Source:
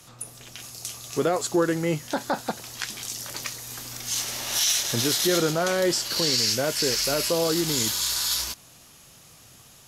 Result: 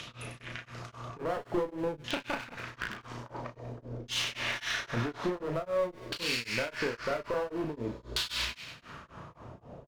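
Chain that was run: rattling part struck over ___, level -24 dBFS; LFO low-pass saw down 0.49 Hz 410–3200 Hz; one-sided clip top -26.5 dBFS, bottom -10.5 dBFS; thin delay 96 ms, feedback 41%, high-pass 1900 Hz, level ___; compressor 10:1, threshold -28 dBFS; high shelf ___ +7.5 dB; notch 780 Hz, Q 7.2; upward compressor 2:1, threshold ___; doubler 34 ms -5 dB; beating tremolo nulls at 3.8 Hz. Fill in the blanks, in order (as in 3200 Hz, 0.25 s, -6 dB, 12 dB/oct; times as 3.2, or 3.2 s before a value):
-39 dBFS, -7 dB, 9000 Hz, -34 dBFS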